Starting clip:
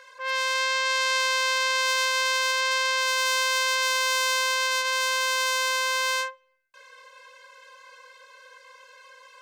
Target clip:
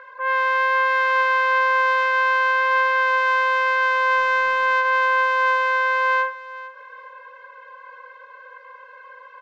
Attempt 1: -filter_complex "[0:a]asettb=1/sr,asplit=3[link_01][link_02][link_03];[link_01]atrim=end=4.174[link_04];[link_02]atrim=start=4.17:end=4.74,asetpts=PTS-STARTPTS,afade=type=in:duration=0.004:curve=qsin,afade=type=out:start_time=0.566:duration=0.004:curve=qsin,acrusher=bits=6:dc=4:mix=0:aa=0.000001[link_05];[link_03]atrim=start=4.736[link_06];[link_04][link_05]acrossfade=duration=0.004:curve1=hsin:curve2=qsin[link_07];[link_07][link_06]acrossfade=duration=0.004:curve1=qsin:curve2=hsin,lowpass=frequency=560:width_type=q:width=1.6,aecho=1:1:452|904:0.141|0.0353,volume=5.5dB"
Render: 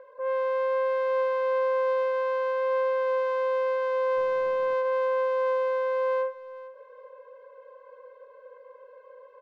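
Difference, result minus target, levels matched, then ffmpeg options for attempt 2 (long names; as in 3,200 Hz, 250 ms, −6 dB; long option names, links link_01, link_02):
500 Hz band +11.5 dB
-filter_complex "[0:a]asettb=1/sr,asplit=3[link_01][link_02][link_03];[link_01]atrim=end=4.174[link_04];[link_02]atrim=start=4.17:end=4.74,asetpts=PTS-STARTPTS,afade=type=in:duration=0.004:curve=qsin,afade=type=out:start_time=0.566:duration=0.004:curve=qsin,acrusher=bits=6:dc=4:mix=0:aa=0.000001[link_05];[link_03]atrim=start=4.736[link_06];[link_04][link_05]acrossfade=duration=0.004:curve1=hsin:curve2=qsin[link_07];[link_07][link_06]acrossfade=duration=0.004:curve1=qsin:curve2=hsin,lowpass=frequency=1400:width_type=q:width=1.6,aecho=1:1:452|904:0.141|0.0353,volume=5.5dB"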